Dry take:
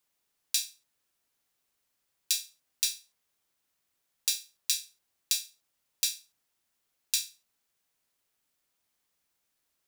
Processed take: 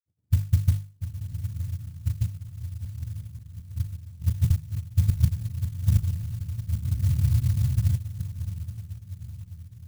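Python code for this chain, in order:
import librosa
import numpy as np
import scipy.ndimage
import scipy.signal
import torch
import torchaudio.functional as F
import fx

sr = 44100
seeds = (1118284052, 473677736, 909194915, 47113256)

y = fx.octave_mirror(x, sr, pivot_hz=630.0)
y = fx.low_shelf(y, sr, hz=320.0, db=6.5)
y = fx.level_steps(y, sr, step_db=10)
y = fx.echo_feedback(y, sr, ms=785, feedback_pct=28, wet_db=-7.0)
y = fx.granulator(y, sr, seeds[0], grain_ms=100.0, per_s=20.0, spray_ms=613.0, spread_st=0)
y = fx.hum_notches(y, sr, base_hz=50, count=3)
y = fx.echo_diffused(y, sr, ms=997, feedback_pct=46, wet_db=-8)
y = fx.spec_freeze(y, sr, seeds[1], at_s=6.87, hold_s=1.09)
y = fx.clock_jitter(y, sr, seeds[2], jitter_ms=0.099)
y = y * 10.0 ** (7.0 / 20.0)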